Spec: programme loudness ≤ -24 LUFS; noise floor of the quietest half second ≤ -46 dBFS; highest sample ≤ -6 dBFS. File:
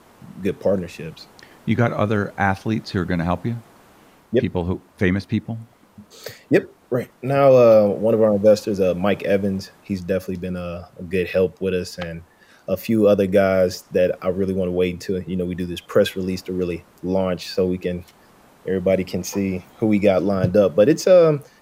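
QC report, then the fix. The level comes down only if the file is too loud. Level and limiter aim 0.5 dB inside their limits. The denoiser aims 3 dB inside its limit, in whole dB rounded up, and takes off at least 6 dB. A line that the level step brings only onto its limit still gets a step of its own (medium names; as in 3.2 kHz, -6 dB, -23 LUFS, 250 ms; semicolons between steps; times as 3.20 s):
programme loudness -20.0 LUFS: fail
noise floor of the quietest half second -51 dBFS: pass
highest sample -3.5 dBFS: fail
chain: trim -4.5 dB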